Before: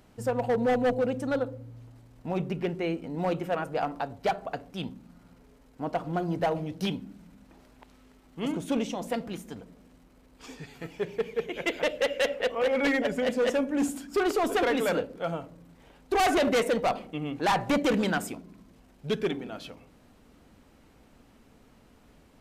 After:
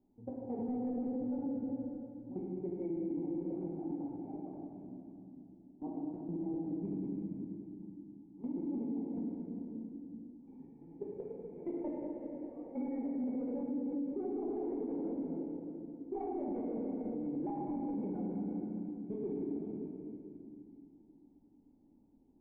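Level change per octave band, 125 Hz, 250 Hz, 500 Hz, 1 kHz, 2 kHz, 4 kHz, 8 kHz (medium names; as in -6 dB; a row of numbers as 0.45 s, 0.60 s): -10.5 dB, -4.5 dB, -14.0 dB, -19.0 dB, under -35 dB, under -40 dB, under -35 dB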